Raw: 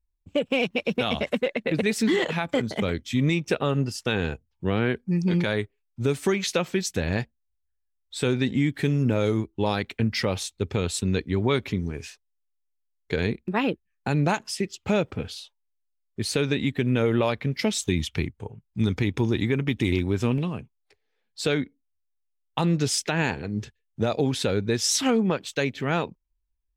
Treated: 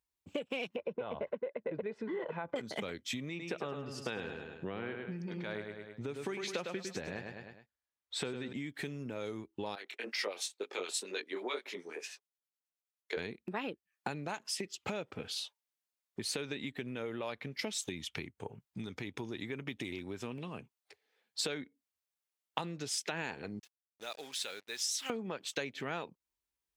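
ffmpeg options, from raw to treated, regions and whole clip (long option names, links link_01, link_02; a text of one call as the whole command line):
ffmpeg -i in.wav -filter_complex "[0:a]asettb=1/sr,asplit=3[link_01][link_02][link_03];[link_01]atrim=end=0.764[link_04];[link_02]atrim=start=0.76:end=2.56,asetpts=PTS-STARTPTS,afade=type=in:duration=0.004:curve=qsin,afade=type=out:start_time=1.796:duration=0.004:curve=qsin,lowpass=1100,aecho=1:1:2:0.42,atrim=end_sample=79380[link_05];[link_03]atrim=start=2.556[link_06];[link_04][link_05]acrossfade=duration=0.004:curve1=hsin:curve2=qsin[link_07];[link_07][link_06]acrossfade=duration=0.004:curve1=qsin:curve2=hsin,asettb=1/sr,asplit=3[link_08][link_09][link_10];[link_08]atrim=end=3.294[link_11];[link_09]atrim=start=3.29:end=8.53,asetpts=PTS-STARTPTS,afade=type=in:duration=0.004:curve=qsin,afade=type=out:start_time=5.236:duration=0.004:curve=qsin,lowpass=frequency=2700:poles=1,aecho=1:1:104|208|312|416:0.447|0.17|0.0645|0.0245,atrim=end_sample=231084[link_12];[link_10]atrim=start=8.526[link_13];[link_11][link_12]acrossfade=duration=0.004:curve1=hsin:curve2=qsin[link_14];[link_14][link_13]acrossfade=duration=0.004:curve1=qsin:curve2=hsin,asettb=1/sr,asplit=3[link_15][link_16][link_17];[link_15]atrim=end=9.754[link_18];[link_16]atrim=start=9.75:end=13.17,asetpts=PTS-STARTPTS,afade=type=in:duration=0.004:curve=qsin,afade=type=out:start_time=3.416:duration=0.004:curve=qsin,highpass=frequency=350:width=0.5412,highpass=frequency=350:width=1.3066,flanger=delay=18.5:depth=7.3:speed=2.1,acrossover=split=1300[link_19][link_20];[link_19]aeval=exprs='val(0)*(1-0.7/2+0.7/2*cos(2*PI*9.4*n/s))':channel_layout=same[link_21];[link_20]aeval=exprs='val(0)*(1-0.7/2-0.7/2*cos(2*PI*9.4*n/s))':channel_layout=same[link_22];[link_21][link_22]amix=inputs=2:normalize=0[link_23];[link_17]atrim=start=13.166[link_24];[link_18][link_23]acrossfade=duration=0.004:curve1=hsin:curve2=qsin[link_25];[link_25][link_24]acrossfade=duration=0.004:curve1=qsin:curve2=hsin,asettb=1/sr,asplit=3[link_26][link_27][link_28];[link_26]atrim=end=23.594[link_29];[link_27]atrim=start=23.59:end=25.1,asetpts=PTS-STARTPTS,afade=type=in:duration=0.004:curve=qsin,afade=type=out:start_time=1.506:duration=0.004:curve=qsin,lowpass=frequency=3000:poles=1,aderivative,acrusher=bits=8:mix=0:aa=0.5[link_30];[link_28]atrim=start=25.096[link_31];[link_29][link_30]acrossfade=duration=0.004:curve1=hsin:curve2=qsin[link_32];[link_32][link_31]acrossfade=duration=0.004:curve1=qsin:curve2=hsin,acompressor=threshold=-35dB:ratio=10,highpass=100,lowshelf=frequency=230:gain=-11.5,volume=3dB" out.wav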